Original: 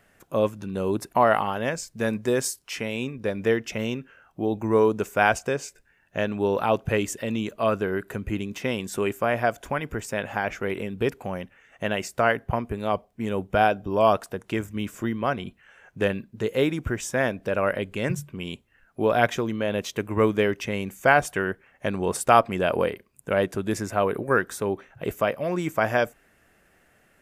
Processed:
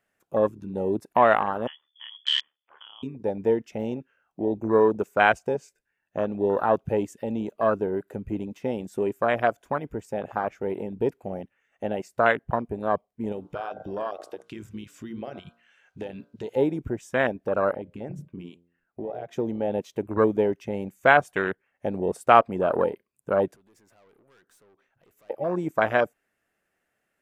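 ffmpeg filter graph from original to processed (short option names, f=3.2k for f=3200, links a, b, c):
-filter_complex "[0:a]asettb=1/sr,asplit=3[a][b][c];[a]atrim=end=1.674[d];[b]atrim=start=1.67:end=3.03,asetpts=PTS-STARTPTS,afade=t=in:d=0.004:c=qsin,afade=t=out:st=1.356:d=0.004:c=qsin,lowpass=f=3k:t=q:w=0.5098,lowpass=f=3k:t=q:w=0.6013,lowpass=f=3k:t=q:w=0.9,lowpass=f=3k:t=q:w=2.563,afreqshift=-3500,lowshelf=f=330:g=-6,aeval=exprs='val(0)*sin(2*PI*37*n/s)':c=same[e];[c]atrim=start=3.026[f];[d][e]acrossfade=d=0.004:c1=hsin:c2=qsin[g];[g][f]acrossfade=d=0.004:c1=qsin:c2=hsin,asettb=1/sr,asplit=3[h][i][j];[h]atrim=end=13.324[k];[i]atrim=start=13.32:end=16.56,asetpts=PTS-STARTPTS,afade=t=in:d=0.004:c=qsin,afade=t=out:st=3.236:d=0.004:c=qsin,equalizer=f=3.9k:w=0.56:g=13.5,bandreject=f=58.39:t=h:w=4,bandreject=f=116.78:t=h:w=4,bandreject=f=175.17:t=h:w=4,bandreject=f=233.56:t=h:w=4,bandreject=f=291.95:t=h:w=4,bandreject=f=350.34:t=h:w=4,bandreject=f=408.73:t=h:w=4,bandreject=f=467.12:t=h:w=4,bandreject=f=525.51:t=h:w=4,bandreject=f=583.9:t=h:w=4,bandreject=f=642.29:t=h:w=4,bandreject=f=700.68:t=h:w=4,bandreject=f=759.07:t=h:w=4,bandreject=f=817.46:t=h:w=4,bandreject=f=875.85:t=h:w=4,bandreject=f=934.24:t=h:w=4,bandreject=f=992.63:t=h:w=4,bandreject=f=1.05102k:t=h:w=4,bandreject=f=1.10941k:t=h:w=4,bandreject=f=1.1678k:t=h:w=4,bandreject=f=1.22619k:t=h:w=4,bandreject=f=1.28458k:t=h:w=4,bandreject=f=1.34297k:t=h:w=4,bandreject=f=1.40136k:t=h:w=4,bandreject=f=1.45975k:t=h:w=4,bandreject=f=1.51814k:t=h:w=4,bandreject=f=1.57653k:t=h:w=4,acompressor=threshold=-29dB:ratio=4:attack=3.2:release=140:knee=1:detection=peak[l];[j]atrim=start=16.556[m];[k][l]acrossfade=d=0.004:c1=hsin:c2=qsin[n];[n][m]acrossfade=d=0.004:c1=qsin:c2=hsin,asettb=1/sr,asplit=3[o][p][q];[o]atrim=end=17.734[r];[p]atrim=start=17.73:end=19.33,asetpts=PTS-STARTPTS,afade=t=in:d=0.004:c=qsin,afade=t=out:st=1.596:d=0.004:c=qsin,highshelf=f=4.4k:g=-9,bandreject=f=86.19:t=h:w=4,bandreject=f=172.38:t=h:w=4,bandreject=f=258.57:t=h:w=4,bandreject=f=344.76:t=h:w=4,bandreject=f=430.95:t=h:w=4,bandreject=f=517.14:t=h:w=4,bandreject=f=603.33:t=h:w=4,bandreject=f=689.52:t=h:w=4,bandreject=f=775.71:t=h:w=4,bandreject=f=861.9:t=h:w=4,acompressor=threshold=-28dB:ratio=8:attack=3.2:release=140:knee=1:detection=peak[s];[q]atrim=start=19.326[t];[r][s]acrossfade=d=0.004:c1=hsin:c2=qsin[u];[u][t]acrossfade=d=0.004:c1=qsin:c2=hsin,asettb=1/sr,asplit=3[v][w][x];[v]atrim=end=23.564[y];[w]atrim=start=23.56:end=25.3,asetpts=PTS-STARTPTS,afade=t=in:d=0.004:c=qsin,afade=t=out:st=1.736:d=0.004:c=qsin,acompressor=threshold=-41dB:ratio=2:attack=3.2:release=140:knee=1:detection=peak,aeval=exprs='(tanh(100*val(0)+0.55)-tanh(0.55))/100':c=same[z];[x]atrim=start=25.296[aa];[y][z]acrossfade=d=0.004:c1=hsin:c2=qsin[ab];[ab][aa]acrossfade=d=0.004:c1=qsin:c2=hsin,afwtdn=0.0501,lowshelf=f=130:g=-11,volume=1.5dB"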